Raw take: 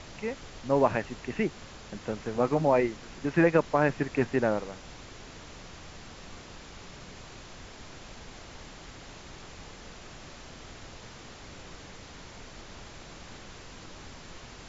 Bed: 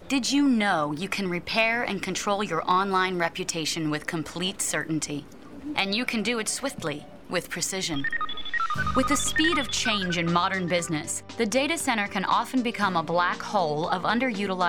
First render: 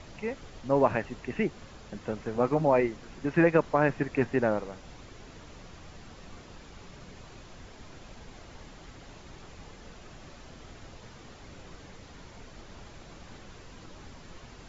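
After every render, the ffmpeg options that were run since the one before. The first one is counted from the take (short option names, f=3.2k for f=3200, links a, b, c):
-af "afftdn=nr=6:nf=-47"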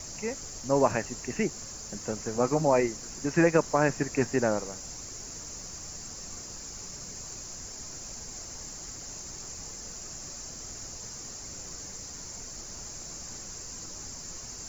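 -af "aexciter=amount=14.3:drive=6.2:freq=5.3k"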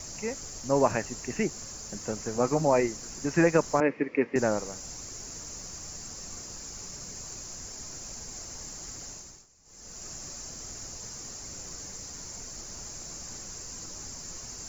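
-filter_complex "[0:a]asettb=1/sr,asplit=3[a][b][c];[a]atrim=end=3.804[d];[b]atrim=start=3.8:end=4.36,asetpts=PTS-STARTPTS,afade=t=in:d=0.004:c=qsin,afade=t=out:st=0.556:d=0.004:c=qsin,highpass=270,equalizer=f=280:t=q:w=4:g=5,equalizer=f=480:t=q:w=4:g=7,equalizer=f=720:t=q:w=4:g=-10,equalizer=f=1k:t=q:w=4:g=-3,equalizer=f=1.5k:t=q:w=4:g=-8,equalizer=f=2.2k:t=q:w=4:g=8,lowpass=f=2.6k:w=0.5412,lowpass=f=2.6k:w=1.3066[e];[c]atrim=start=4.356[f];[d][e]acrossfade=d=0.004:c1=hsin:c2=qsin[g];[g][f]acrossfade=d=0.004:c1=qsin:c2=hsin,asplit=3[h][i][j];[h]atrim=end=9.47,asetpts=PTS-STARTPTS,afade=t=out:st=9.04:d=0.43:silence=0.0891251[k];[i]atrim=start=9.47:end=9.64,asetpts=PTS-STARTPTS,volume=-21dB[l];[j]atrim=start=9.64,asetpts=PTS-STARTPTS,afade=t=in:d=0.43:silence=0.0891251[m];[k][l][m]concat=n=3:v=0:a=1"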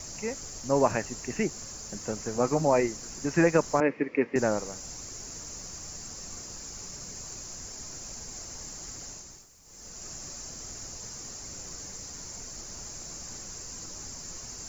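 -filter_complex "[0:a]asettb=1/sr,asplit=3[a][b][c];[a]atrim=end=9.304[d];[b]atrim=start=9.3:end=9.89,asetpts=PTS-STARTPTS,afade=t=in:d=0.004:c=qsin,afade=t=out:st=0.586:d=0.004:c=qsin,aeval=exprs='val(0)+0.5*0.00133*sgn(val(0))':c=same[e];[c]atrim=start=9.886[f];[d][e]acrossfade=d=0.004:c1=hsin:c2=qsin[g];[g][f]acrossfade=d=0.004:c1=qsin:c2=hsin"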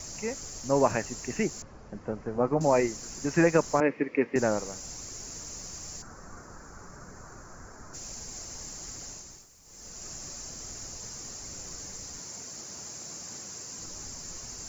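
-filter_complex "[0:a]asettb=1/sr,asplit=3[a][b][c];[a]atrim=end=1.624[d];[b]atrim=start=1.62:end=2.61,asetpts=PTS-STARTPTS,afade=t=in:d=0.004:c=qsin,afade=t=out:st=0.986:d=0.004:c=qsin,lowpass=1.5k[e];[c]atrim=start=2.606[f];[d][e]acrossfade=d=0.004:c1=hsin:c2=qsin[g];[g][f]acrossfade=d=0.004:c1=qsin:c2=hsin,asplit=3[h][i][j];[h]afade=t=out:st=6.01:d=0.02[k];[i]highshelf=f=2.1k:t=q:w=3:g=-13,afade=t=in:st=6.01:d=0.02,afade=t=out:st=7.93:d=0.02[l];[j]afade=t=in:st=7.93:d=0.02[m];[k][l][m]amix=inputs=3:normalize=0,asettb=1/sr,asplit=3[n][o][p];[n]atrim=end=12.194[q];[o]atrim=start=12.19:end=13.79,asetpts=PTS-STARTPTS,afade=t=in:d=0.004:c=qsin,afade=t=out:st=1.596:d=0.004:c=qsin,highpass=120[r];[p]atrim=start=13.786[s];[q][r]acrossfade=d=0.004:c1=hsin:c2=qsin[t];[t][s]acrossfade=d=0.004:c1=qsin:c2=hsin"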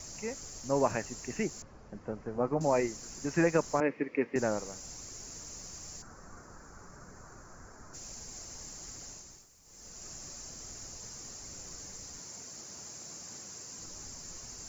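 -af "volume=-4.5dB"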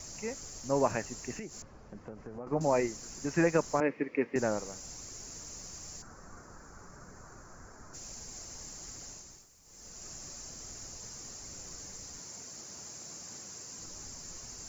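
-filter_complex "[0:a]asettb=1/sr,asplit=3[a][b][c];[a]atrim=end=1.394[d];[b]atrim=start=1.39:end=2.47,asetpts=PTS-STARTPTS,afade=t=in:d=0.004:c=qsin,afade=t=out:st=1.076:d=0.004:c=qsin,acompressor=threshold=-40dB:ratio=4:attack=3.2:release=140:knee=1:detection=peak[e];[c]atrim=start=2.466[f];[d][e]acrossfade=d=0.004:c1=hsin:c2=qsin[g];[g][f]acrossfade=d=0.004:c1=qsin:c2=hsin"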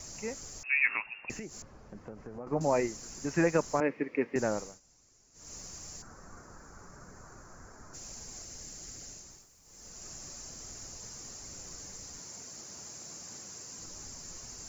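-filter_complex "[0:a]asettb=1/sr,asplit=3[a][b][c];[a]atrim=end=0.634[d];[b]atrim=start=0.63:end=1.3,asetpts=PTS-STARTPTS,afade=t=in:d=0.004:c=qsin,afade=t=out:st=0.666:d=0.004:c=qsin,lowpass=f=2.4k:t=q:w=0.5098,lowpass=f=2.4k:t=q:w=0.6013,lowpass=f=2.4k:t=q:w=0.9,lowpass=f=2.4k:t=q:w=2.563,afreqshift=-2800[e];[c]atrim=start=1.296[f];[d][e]acrossfade=d=0.004:c1=hsin:c2=qsin[g];[g][f]acrossfade=d=0.004:c1=qsin:c2=hsin,asettb=1/sr,asplit=3[h][i][j];[h]atrim=end=8.424[k];[i]atrim=start=8.42:end=9.22,asetpts=PTS-STARTPTS,afade=t=in:d=0.004:c=qsin,afade=t=out:st=0.796:d=0.004:c=qsin,equalizer=f=1k:w=1.8:g=-6.5[l];[j]atrim=start=9.216[m];[k][l]acrossfade=d=0.004:c1=hsin:c2=qsin[n];[n][m]acrossfade=d=0.004:c1=qsin:c2=hsin,asplit=3[o][p][q];[o]atrim=end=4.8,asetpts=PTS-STARTPTS,afade=t=out:st=4.59:d=0.21:silence=0.112202[r];[p]atrim=start=4.8:end=5.33,asetpts=PTS-STARTPTS,volume=-19dB[s];[q]atrim=start=5.33,asetpts=PTS-STARTPTS,afade=t=in:d=0.21:silence=0.112202[t];[r][s][t]concat=n=3:v=0:a=1"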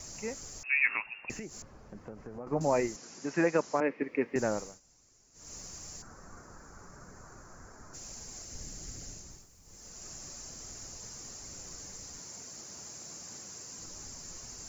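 -filter_complex "[0:a]asettb=1/sr,asplit=3[a][b][c];[a]atrim=end=2.964[d];[b]atrim=start=2.96:end=4.02,asetpts=PTS-STARTPTS,afade=t=in:d=0.004:c=qsin,afade=t=out:st=1.056:d=0.004:c=qsin,highpass=200,lowpass=5.6k[e];[c]atrim=start=4.016[f];[d][e]acrossfade=d=0.004:c1=hsin:c2=qsin[g];[g][f]acrossfade=d=0.004:c1=qsin:c2=hsin,asettb=1/sr,asplit=3[h][i][j];[h]atrim=end=8.524[k];[i]atrim=start=8.52:end=9.77,asetpts=PTS-STARTPTS,afade=t=in:d=0.004:c=qsin,afade=t=out:st=1.246:d=0.004:c=qsin,lowshelf=f=260:g=8.5[l];[j]atrim=start=9.766[m];[k][l]acrossfade=d=0.004:c1=hsin:c2=qsin[n];[n][m]acrossfade=d=0.004:c1=qsin:c2=hsin"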